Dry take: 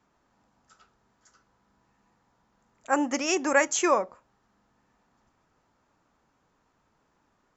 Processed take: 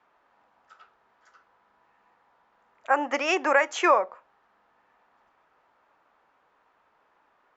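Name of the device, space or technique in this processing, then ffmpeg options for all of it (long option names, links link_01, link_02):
DJ mixer with the lows and highs turned down: -filter_complex "[0:a]acrossover=split=440 3500:gain=0.112 1 0.0794[link_01][link_02][link_03];[link_01][link_02][link_03]amix=inputs=3:normalize=0,alimiter=limit=-16dB:level=0:latency=1:release=212,volume=7dB"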